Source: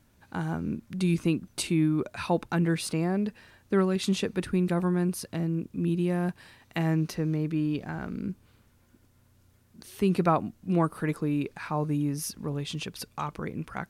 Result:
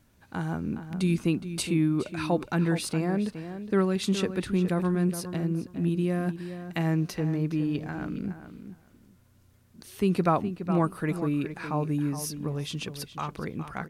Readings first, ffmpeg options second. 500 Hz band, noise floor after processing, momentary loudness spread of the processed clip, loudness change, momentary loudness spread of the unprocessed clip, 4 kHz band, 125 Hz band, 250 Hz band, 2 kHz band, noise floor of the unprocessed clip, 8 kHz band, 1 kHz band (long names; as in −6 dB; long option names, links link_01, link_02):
+0.5 dB, −60 dBFS, 10 LU, +0.5 dB, 10 LU, 0.0 dB, +0.5 dB, +0.5 dB, +0.5 dB, −63 dBFS, 0.0 dB, 0.0 dB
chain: -filter_complex "[0:a]bandreject=frequency=880:width=29,asplit=2[link_01][link_02];[link_02]adelay=416,lowpass=frequency=3500:poles=1,volume=-10.5dB,asplit=2[link_03][link_04];[link_04]adelay=416,lowpass=frequency=3500:poles=1,volume=0.17[link_05];[link_01][link_03][link_05]amix=inputs=3:normalize=0"